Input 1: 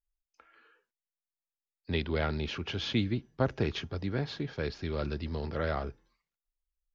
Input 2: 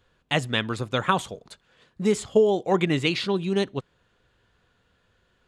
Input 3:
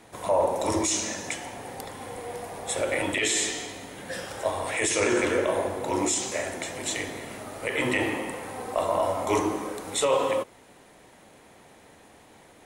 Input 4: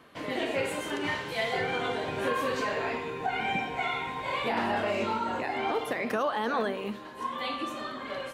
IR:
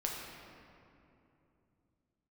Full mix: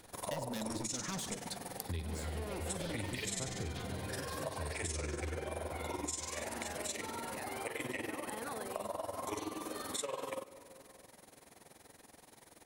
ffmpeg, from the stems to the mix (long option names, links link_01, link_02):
-filter_complex "[0:a]equalizer=frequency=81:width_type=o:width=0.61:gain=13,tremolo=f=0.6:d=0.74,volume=-8.5dB,asplit=3[link_01][link_02][link_03];[link_02]volume=-3dB[link_04];[1:a]equalizer=frequency=220:width_type=o:width=0.73:gain=11.5,alimiter=limit=-13.5dB:level=0:latency=1,asoftclip=type=tanh:threshold=-29dB,volume=-2.5dB,asplit=2[link_05][link_06];[link_06]volume=-13.5dB[link_07];[2:a]tremolo=f=21:d=0.857,volume=-4.5dB,asplit=2[link_08][link_09];[link_09]volume=-21.5dB[link_10];[3:a]acompressor=threshold=-31dB:ratio=6,adelay=1950,volume=-7.5dB[link_11];[link_03]apad=whole_len=241447[link_12];[link_05][link_12]sidechaincompress=threshold=-44dB:ratio=8:attack=16:release=867[link_13];[4:a]atrim=start_sample=2205[link_14];[link_04][link_07][link_10]amix=inputs=3:normalize=0[link_15];[link_15][link_14]afir=irnorm=-1:irlink=0[link_16];[link_01][link_13][link_08][link_11][link_16]amix=inputs=5:normalize=0,aexciter=amount=2.4:drive=3.7:freq=4200,acompressor=threshold=-37dB:ratio=5"